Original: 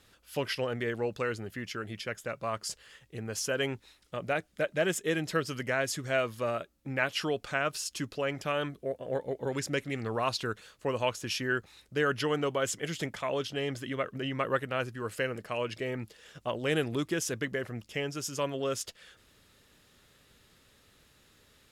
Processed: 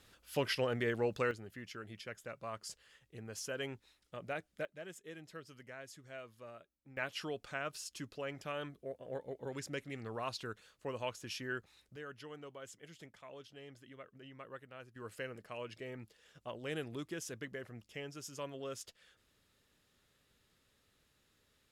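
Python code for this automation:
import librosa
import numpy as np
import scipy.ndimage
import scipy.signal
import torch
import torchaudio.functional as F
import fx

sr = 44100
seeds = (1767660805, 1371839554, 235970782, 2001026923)

y = fx.gain(x, sr, db=fx.steps((0.0, -2.0), (1.31, -10.0), (4.65, -20.0), (6.97, -10.0), (11.96, -20.0), (14.96, -11.5)))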